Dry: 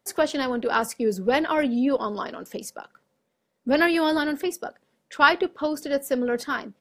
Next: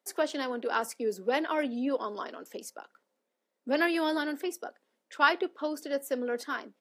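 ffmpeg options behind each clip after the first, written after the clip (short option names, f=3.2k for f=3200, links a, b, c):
-af "highpass=f=250:w=0.5412,highpass=f=250:w=1.3066,volume=-6.5dB"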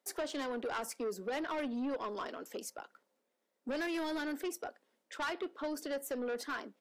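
-af "acompressor=threshold=-31dB:ratio=2,asoftclip=type=tanh:threshold=-32dB"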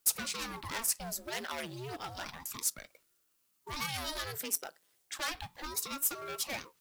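-af "crystalizer=i=10:c=0,acrusher=bits=4:mode=log:mix=0:aa=0.000001,aeval=exprs='val(0)*sin(2*PI*480*n/s+480*0.85/0.32*sin(2*PI*0.32*n/s))':c=same,volume=-4.5dB"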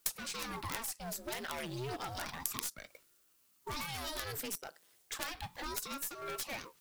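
-af "acompressor=threshold=-39dB:ratio=6,aeval=exprs='0.075*(cos(1*acos(clip(val(0)/0.075,-1,1)))-cos(1*PI/2))+0.0335*(cos(3*acos(clip(val(0)/0.075,-1,1)))-cos(3*PI/2))+0.000944*(cos(8*acos(clip(val(0)/0.075,-1,1)))-cos(8*PI/2))':c=same,volume=14dB"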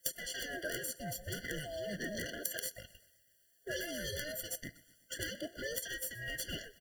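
-af "afftfilt=real='real(if(lt(b,1008),b+24*(1-2*mod(floor(b/24),2)),b),0)':imag='imag(if(lt(b,1008),b+24*(1-2*mod(floor(b/24),2)),b),0)':win_size=2048:overlap=0.75,aecho=1:1:123|246|369|492:0.0891|0.0472|0.025|0.0133,afftfilt=real='re*eq(mod(floor(b*sr/1024/690),2),0)':imag='im*eq(mod(floor(b*sr/1024/690),2),0)':win_size=1024:overlap=0.75,volume=2.5dB"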